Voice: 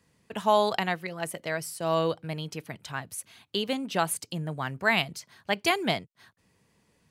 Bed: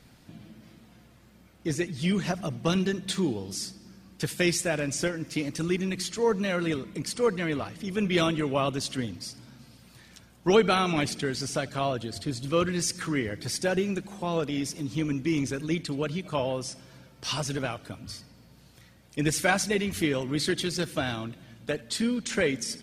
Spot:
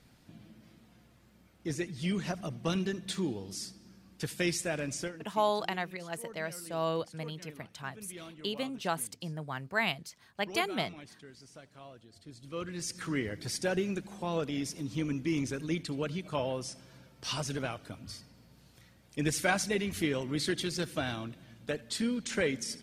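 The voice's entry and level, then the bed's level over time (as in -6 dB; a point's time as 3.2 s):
4.90 s, -6.0 dB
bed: 4.94 s -6 dB
5.46 s -22.5 dB
12.05 s -22.5 dB
13.13 s -4.5 dB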